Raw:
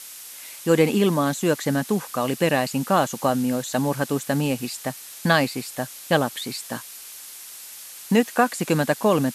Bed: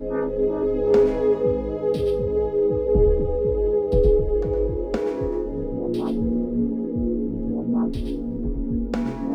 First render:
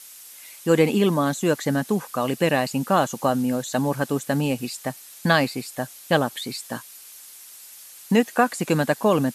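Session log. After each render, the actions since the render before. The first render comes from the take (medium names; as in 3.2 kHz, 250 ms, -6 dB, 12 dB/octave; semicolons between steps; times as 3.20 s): noise reduction 6 dB, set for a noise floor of -41 dBFS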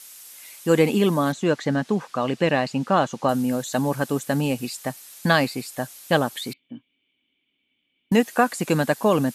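1.32–3.29 s: low-pass 4.9 kHz; 6.53–8.12 s: cascade formant filter i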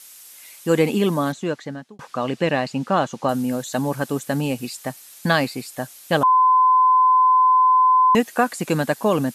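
1.23–1.99 s: fade out; 4.55–5.49 s: short-mantissa float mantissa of 6-bit; 6.23–8.15 s: bleep 1.02 kHz -11.5 dBFS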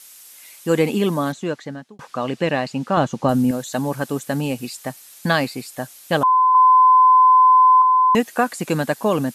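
2.97–3.51 s: bass shelf 320 Hz +9.5 dB; 6.54–7.82 s: comb 7.1 ms, depth 99%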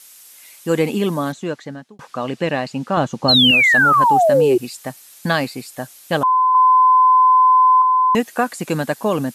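3.28–4.58 s: painted sound fall 350–4400 Hz -13 dBFS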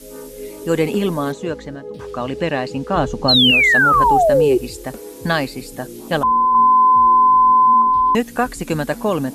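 add bed -10.5 dB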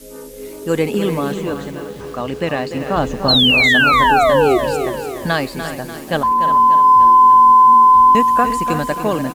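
echo from a far wall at 60 m, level -11 dB; bit-crushed delay 294 ms, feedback 55%, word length 6-bit, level -9 dB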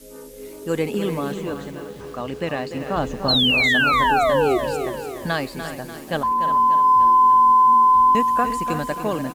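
trim -5.5 dB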